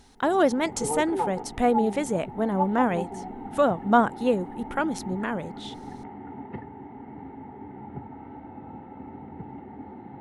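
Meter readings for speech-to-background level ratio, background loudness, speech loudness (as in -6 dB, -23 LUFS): 11.0 dB, -36.5 LUFS, -25.5 LUFS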